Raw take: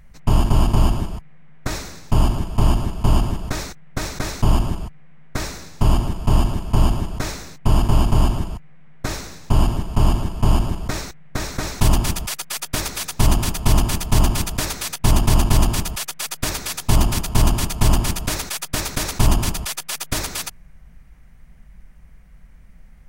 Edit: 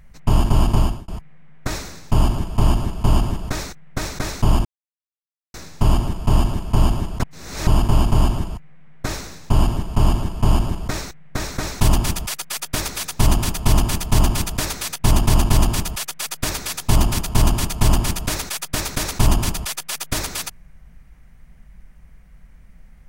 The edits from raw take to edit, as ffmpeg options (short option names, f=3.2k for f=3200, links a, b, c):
-filter_complex "[0:a]asplit=6[a][b][c][d][e][f];[a]atrim=end=1.08,asetpts=PTS-STARTPTS,afade=t=out:st=0.77:d=0.31[g];[b]atrim=start=1.08:end=4.65,asetpts=PTS-STARTPTS,afade=t=in:d=0.004:c=hsin,afade=t=out:st=3.566:d=0.004:c=hsin[h];[c]atrim=start=4.65:end=5.54,asetpts=PTS-STARTPTS,volume=0[i];[d]atrim=start=5.54:end=7.222,asetpts=PTS-STARTPTS,afade=t=in:d=0.004:c=hsin[j];[e]atrim=start=7.218:end=7.672,asetpts=PTS-STARTPTS,areverse[k];[f]atrim=start=7.668[l];[g][h][i][j]concat=n=4:v=0:a=1[m];[m][k]acrossfade=d=0.004:c1=hsin:c2=hsin[n];[n][l]acrossfade=d=0.004:c1=hsin:c2=hsin"